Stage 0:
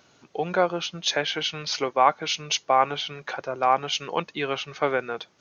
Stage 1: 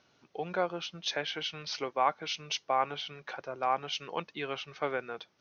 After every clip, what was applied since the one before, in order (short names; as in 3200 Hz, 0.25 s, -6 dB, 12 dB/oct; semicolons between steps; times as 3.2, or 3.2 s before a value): elliptic low-pass 5900 Hz, stop band 40 dB; gain -8 dB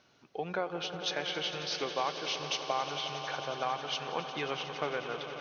compressor 3:1, threshold -32 dBFS, peak gain reduction 8.5 dB; swelling echo 90 ms, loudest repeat 5, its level -13.5 dB; gain +1.5 dB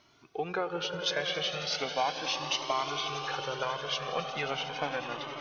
reverb RT60 3.6 s, pre-delay 0.11 s, DRR 17 dB; cascading flanger rising 0.37 Hz; gain +7 dB